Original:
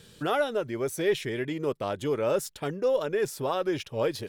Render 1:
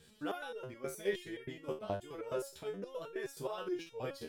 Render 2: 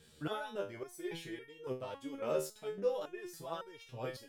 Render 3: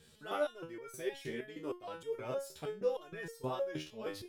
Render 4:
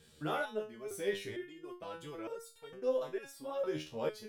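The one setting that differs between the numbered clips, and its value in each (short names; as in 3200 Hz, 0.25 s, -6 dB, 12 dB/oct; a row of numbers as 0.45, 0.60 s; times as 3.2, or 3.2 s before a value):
stepped resonator, rate: 9.5, 3.6, 6.4, 2.2 Hz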